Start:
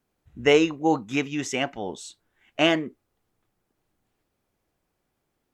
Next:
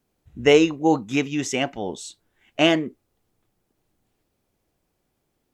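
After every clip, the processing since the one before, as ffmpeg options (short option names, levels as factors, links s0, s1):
-af "equalizer=f=1400:t=o:w=1.7:g=-4.5,volume=1.58"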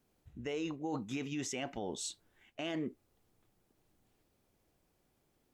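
-af "areverse,acompressor=threshold=0.0562:ratio=6,areverse,alimiter=level_in=1.41:limit=0.0631:level=0:latency=1:release=162,volume=0.708,volume=0.794"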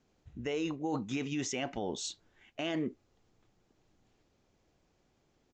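-af "aresample=16000,aresample=44100,volume=1.5"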